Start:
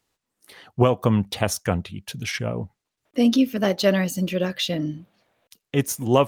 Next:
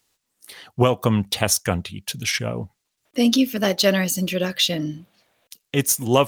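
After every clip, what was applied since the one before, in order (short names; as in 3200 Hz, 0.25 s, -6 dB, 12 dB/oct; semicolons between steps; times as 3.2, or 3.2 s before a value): high shelf 2500 Hz +9.5 dB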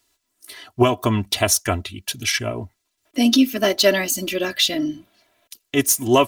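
comb 3 ms, depth 82%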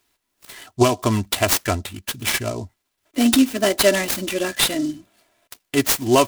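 noise-modulated delay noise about 5400 Hz, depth 0.041 ms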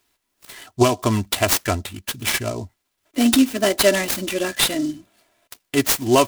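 companded quantiser 8-bit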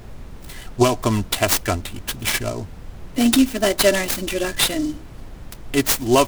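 added noise brown -34 dBFS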